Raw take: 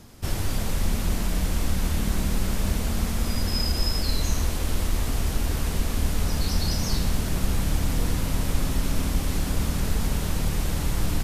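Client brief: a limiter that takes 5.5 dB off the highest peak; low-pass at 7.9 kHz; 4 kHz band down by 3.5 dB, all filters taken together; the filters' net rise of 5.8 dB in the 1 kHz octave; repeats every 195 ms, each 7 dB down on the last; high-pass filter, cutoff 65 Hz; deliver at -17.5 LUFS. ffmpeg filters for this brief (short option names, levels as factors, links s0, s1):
-af "highpass=65,lowpass=7900,equalizer=f=1000:t=o:g=7.5,equalizer=f=4000:t=o:g=-4.5,alimiter=limit=0.0944:level=0:latency=1,aecho=1:1:195|390|585|780|975:0.447|0.201|0.0905|0.0407|0.0183,volume=4.22"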